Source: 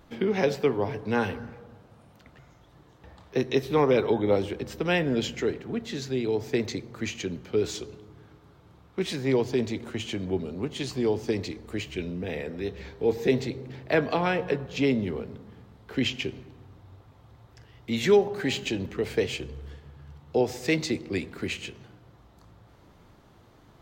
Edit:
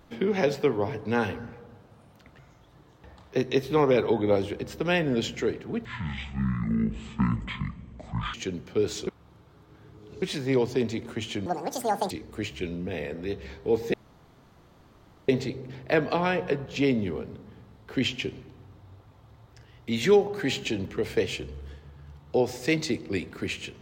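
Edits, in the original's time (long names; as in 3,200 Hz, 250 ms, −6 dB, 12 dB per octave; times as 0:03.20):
0:05.85–0:07.12: play speed 51%
0:07.85–0:09.00: reverse
0:10.24–0:11.46: play speed 189%
0:13.29: splice in room tone 1.35 s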